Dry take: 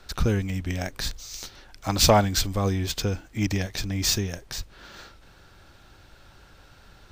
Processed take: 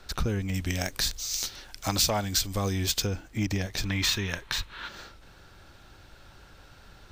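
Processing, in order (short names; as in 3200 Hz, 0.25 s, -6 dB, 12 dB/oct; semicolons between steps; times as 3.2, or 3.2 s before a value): 0.54–3.07 high shelf 2700 Hz +9.5 dB; 3.85–4.88 spectral gain 860–4300 Hz +10 dB; compressor 4:1, threshold -24 dBFS, peak gain reduction 13.5 dB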